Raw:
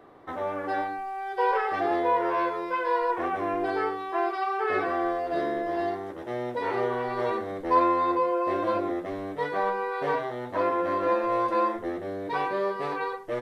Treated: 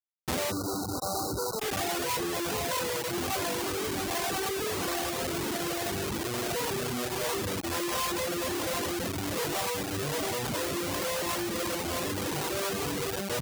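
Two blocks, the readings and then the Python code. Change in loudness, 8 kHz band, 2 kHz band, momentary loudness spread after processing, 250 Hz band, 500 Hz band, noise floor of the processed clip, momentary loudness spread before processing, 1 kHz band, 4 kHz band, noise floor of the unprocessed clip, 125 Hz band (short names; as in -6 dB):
-3.0 dB, n/a, -1.5 dB, 2 LU, -2.0 dB, -5.5 dB, -34 dBFS, 8 LU, -9.0 dB, +13.0 dB, -38 dBFS, +7.0 dB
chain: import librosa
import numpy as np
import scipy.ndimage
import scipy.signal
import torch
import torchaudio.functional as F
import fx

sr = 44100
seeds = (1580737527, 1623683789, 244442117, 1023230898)

p1 = fx.tilt_eq(x, sr, slope=-3.5)
p2 = p1 + fx.echo_single(p1, sr, ms=653, db=-7.5, dry=0)
p3 = fx.harmonic_tremolo(p2, sr, hz=1.3, depth_pct=70, crossover_hz=490.0)
p4 = fx.sample_hold(p3, sr, seeds[0], rate_hz=1100.0, jitter_pct=0)
p5 = p3 + F.gain(torch.from_numpy(p4), -10.5).numpy()
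p6 = fx.schmitt(p5, sr, flips_db=-35.0)
p7 = scipy.signal.sosfilt(scipy.signal.butter(2, 67.0, 'highpass', fs=sr, output='sos'), p6)
p8 = fx.spec_erase(p7, sr, start_s=0.52, length_s=1.08, low_hz=1500.0, high_hz=3800.0)
p9 = fx.high_shelf(p8, sr, hz=3100.0, db=9.0)
p10 = fx.dereverb_blind(p9, sr, rt60_s=1.0)
y = F.gain(torch.from_numpy(p10), -3.0).numpy()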